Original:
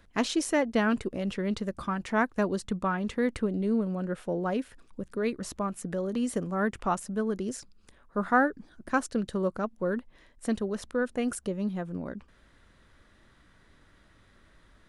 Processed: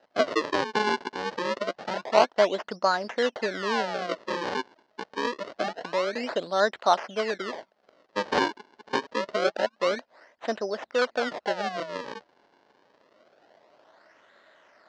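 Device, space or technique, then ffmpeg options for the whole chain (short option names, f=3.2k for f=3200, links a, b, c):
circuit-bent sampling toy: -af "acrusher=samples=39:mix=1:aa=0.000001:lfo=1:lforange=62.4:lforate=0.26,highpass=600,equalizer=f=630:t=q:w=4:g=7,equalizer=f=1.2k:t=q:w=4:g=-4,equalizer=f=2.4k:t=q:w=4:g=-7,equalizer=f=3.5k:t=q:w=4:g=-5,lowpass=f=4.7k:w=0.5412,lowpass=f=4.7k:w=1.3066,volume=8.5dB"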